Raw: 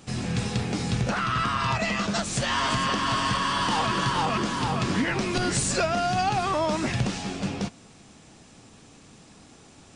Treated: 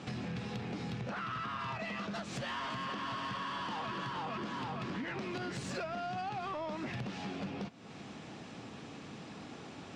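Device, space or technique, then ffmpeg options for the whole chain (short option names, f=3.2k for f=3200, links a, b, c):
AM radio: -af "highpass=120,lowpass=3.6k,acompressor=threshold=-42dB:ratio=5,asoftclip=type=tanh:threshold=-36.5dB,volume=5dB"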